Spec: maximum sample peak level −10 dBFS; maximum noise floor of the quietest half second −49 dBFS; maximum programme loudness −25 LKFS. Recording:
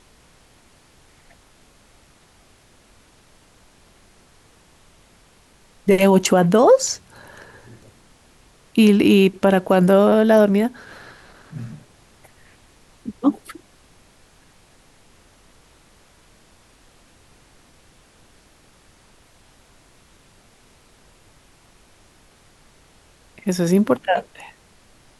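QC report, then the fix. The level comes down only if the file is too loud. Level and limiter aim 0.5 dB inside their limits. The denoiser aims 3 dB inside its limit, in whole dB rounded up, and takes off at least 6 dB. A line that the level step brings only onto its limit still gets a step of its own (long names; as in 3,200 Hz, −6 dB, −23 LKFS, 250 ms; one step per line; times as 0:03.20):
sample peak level −4.5 dBFS: out of spec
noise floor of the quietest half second −53 dBFS: in spec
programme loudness −16.5 LKFS: out of spec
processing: level −9 dB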